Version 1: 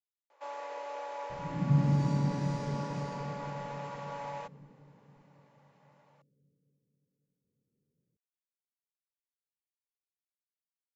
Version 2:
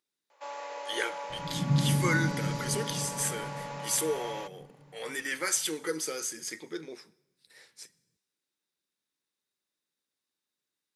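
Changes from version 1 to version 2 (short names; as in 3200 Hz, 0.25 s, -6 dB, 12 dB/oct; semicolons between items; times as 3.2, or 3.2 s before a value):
speech: unmuted; reverb: on, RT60 0.95 s; master: add high shelf 2500 Hz +9 dB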